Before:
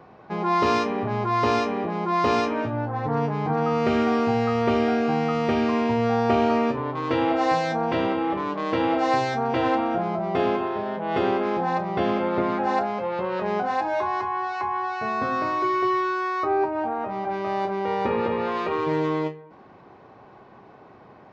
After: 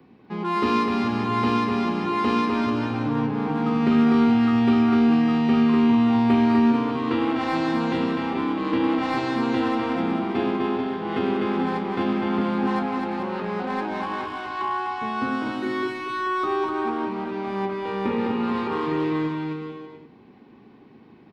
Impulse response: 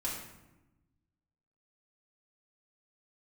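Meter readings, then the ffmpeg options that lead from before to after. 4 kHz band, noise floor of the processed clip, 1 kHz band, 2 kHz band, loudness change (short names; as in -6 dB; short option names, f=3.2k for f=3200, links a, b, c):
+1.0 dB, -50 dBFS, -3.0 dB, -0.5 dB, +1.0 dB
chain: -filter_complex "[0:a]lowshelf=f=440:g=-5,acrossover=split=130|470|1700[a][b][c][d];[c]adynamicsmooth=sensitivity=4.5:basefreq=680[e];[a][b][e][d]amix=inputs=4:normalize=0,equalizer=f=250:t=o:w=0.67:g=11,equalizer=f=630:t=o:w=0.67:g=-11,equalizer=f=6.3k:t=o:w=0.67:g=-9,aecho=1:1:250|437.5|578.1|683.6|762.7:0.631|0.398|0.251|0.158|0.1"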